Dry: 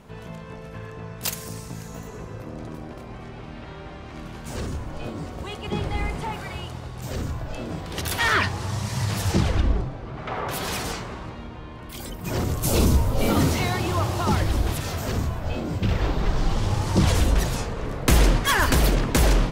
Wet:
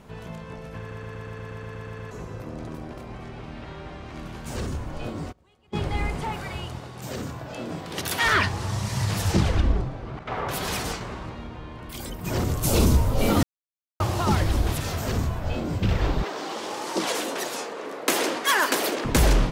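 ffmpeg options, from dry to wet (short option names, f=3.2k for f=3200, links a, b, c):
-filter_complex "[0:a]asplit=3[a][b][c];[a]afade=t=out:st=5.31:d=0.02[d];[b]agate=range=-28dB:threshold=-25dB:ratio=16:release=100:detection=peak,afade=t=in:st=5.31:d=0.02,afade=t=out:st=5.74:d=0.02[e];[c]afade=t=in:st=5.74:d=0.02[f];[d][e][f]amix=inputs=3:normalize=0,asettb=1/sr,asplit=3[g][h][i];[g]atrim=end=6.794[j];[h]atrim=start=6.79:end=8.26,asetpts=PTS-STARTPTS,afade=t=in:d=0.004:c=qsin,afade=t=out:st=1.466:d=0.004:c=qsin,highpass=140[k];[i]atrim=start=8.256[l];[j][k]acrossfade=d=0.004:c1=hsin:c2=qsin[m];[m][l]acrossfade=d=0.004:c1=qsin:c2=hsin,asettb=1/sr,asplit=3[n][o][p];[n]atrim=end=10.194[q];[o]atrim=start=10.19:end=11.01,asetpts=PTS-STARTPTS,afade=t=in:d=0.004:c=qsin,afade=t=out:st=0.816:d=0.004:c=qsin,agate=range=-33dB:threshold=-30dB:ratio=3:release=100:detection=peak[r];[p]atrim=start=11.006[s];[q][r]acrossfade=d=0.004:c1=hsin:c2=qsin[t];[t][s]acrossfade=d=0.004:c1=qsin:c2=hsin,asettb=1/sr,asplit=3[u][v][w];[u]atrim=end=16.234[x];[v]atrim=start=16.23:end=19.05,asetpts=PTS-STARTPTS,afade=t=in:d=0.004:c=qsin,afade=t=out:st=2.816:d=0.004:c=qsin,highpass=f=300:w=0.5412,highpass=f=300:w=1.3066[y];[w]atrim=start=19.046[z];[x][y]acrossfade=d=0.004:c1=hsin:c2=qsin[aa];[aa][z]acrossfade=d=0.004:c1=qsin:c2=hsin,asplit=14[ab][ac][ad][ae][af][ag][ah][ai][aj][ak][al][am][an][ao];[ab]atrim=end=0.912[ap];[ac]atrim=start=0.788:end=0.912[aq];[ad]atrim=start=0.788:end=0.912[ar];[ae]atrim=start=0.788:end=0.912[as];[af]atrim=start=0.788:end=0.912[at];[ag]atrim=start=0.788:end=0.912[au];[ah]atrim=start=0.788:end=0.912[av];[ai]atrim=start=0.788:end=0.912[aw];[aj]atrim=start=0.788:end=0.912[ax];[ak]atrim=start=0.788:end=0.912[ay];[al]atrim=start=0.788:end=0.912[az];[am]atrim=start=2.108:end=13.43,asetpts=PTS-STARTPTS,afade=t=out:st=11.318:d=0.004:c=hsin[ba];[an]atrim=start=13.43:end=14,asetpts=PTS-STARTPTS,volume=0[bb];[ao]atrim=start=14,asetpts=PTS-STARTPTS,afade=t=in:d=0.004:c=hsin[bc];[ap][aq]acrossfade=d=0.004:c1=hsin:c2=hsin[bd];[bd][ar]acrossfade=d=0.004:c1=hsin:c2=hsin[be];[be][as]acrossfade=d=0.004:c1=hsin:c2=hsin[bf];[bf][at]acrossfade=d=0.004:c1=hsin:c2=hsin[bg];[bg][au]acrossfade=d=0.004:c1=hsin:c2=hsin[bh];[bh][av]acrossfade=d=0.004:c1=hsin:c2=hsin[bi];[bi][aw]acrossfade=d=0.004:c1=hsin:c2=hsin[bj];[bj][ax]acrossfade=d=0.004:c1=hsin:c2=hsin[bk];[bk][ay]acrossfade=d=0.004:c1=hsin:c2=hsin[bl];[bl][az]acrossfade=d=0.004:c1=hsin:c2=hsin[bm];[ba][bb][bc]concat=n=3:v=0:a=1[bn];[bm][bn]acrossfade=d=0.004:c1=hsin:c2=hsin"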